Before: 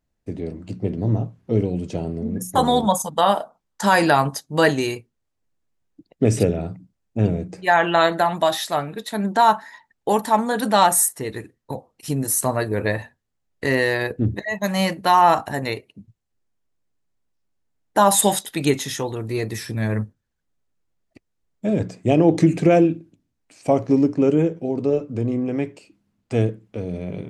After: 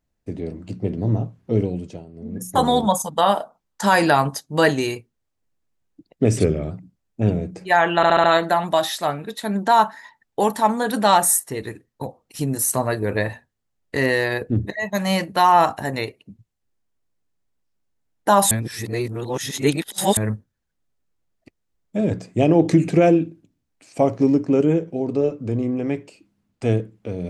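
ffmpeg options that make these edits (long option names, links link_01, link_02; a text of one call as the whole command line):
ffmpeg -i in.wav -filter_complex "[0:a]asplit=11[link_01][link_02][link_03][link_04][link_05][link_06][link_07][link_08][link_09][link_10][link_11];[link_01]atrim=end=2.06,asetpts=PTS-STARTPTS,afade=type=out:start_time=1.64:duration=0.42:silence=0.158489[link_12];[link_02]atrim=start=2.06:end=2.12,asetpts=PTS-STARTPTS,volume=-16dB[link_13];[link_03]atrim=start=2.12:end=6.384,asetpts=PTS-STARTPTS,afade=type=in:duration=0.42:silence=0.158489[link_14];[link_04]atrim=start=6.38:end=6.68,asetpts=PTS-STARTPTS,asetrate=40131,aresample=44100,atrim=end_sample=14538,asetpts=PTS-STARTPTS[link_15];[link_05]atrim=start=6.676:end=8.002[link_16];[link_06]atrim=start=7.928:end=8.002[link_17];[link_07]atrim=start=7.928:end=8.002[link_18];[link_08]atrim=start=7.928:end=8.002[link_19];[link_09]atrim=start=7.928:end=18.202[link_20];[link_10]atrim=start=18.198:end=19.862,asetpts=PTS-STARTPTS,areverse[link_21];[link_11]atrim=start=19.858[link_22];[link_12][link_13][link_14]concat=n=3:v=0:a=1[link_23];[link_23][link_15]acrossfade=duration=0.004:curve1=hsin:curve2=hsin[link_24];[link_24][link_16]acrossfade=duration=0.004:curve1=hsin:curve2=hsin[link_25];[link_25][link_17]acrossfade=duration=0.004:curve1=hsin:curve2=hsin[link_26];[link_26][link_18]acrossfade=duration=0.004:curve1=hsin:curve2=hsin[link_27];[link_27][link_19]acrossfade=duration=0.004:curve1=hsin:curve2=hsin[link_28];[link_28][link_20]acrossfade=duration=0.004:curve1=hsin:curve2=hsin[link_29];[link_29][link_21]acrossfade=duration=0.004:curve1=hsin:curve2=hsin[link_30];[link_30][link_22]acrossfade=duration=0.004:curve1=hsin:curve2=hsin" out.wav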